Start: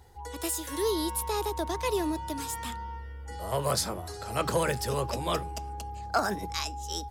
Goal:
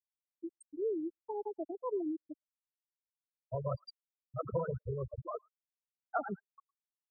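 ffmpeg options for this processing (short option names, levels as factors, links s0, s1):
-filter_complex "[0:a]afftfilt=real='re*gte(hypot(re,im),0.178)':imag='im*gte(hypot(re,im),0.178)':win_size=1024:overlap=0.75,lowshelf=f=180:g=7,acrossover=split=2500[s0][s1];[s1]adelay=110[s2];[s0][s2]amix=inputs=2:normalize=0,volume=0.473"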